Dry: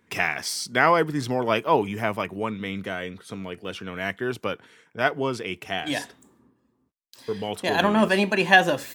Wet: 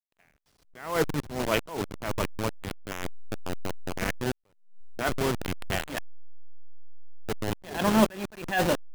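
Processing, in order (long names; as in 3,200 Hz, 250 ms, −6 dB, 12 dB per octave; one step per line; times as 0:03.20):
hold until the input has moved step −20.5 dBFS
level that may rise only so fast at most 110 dB per second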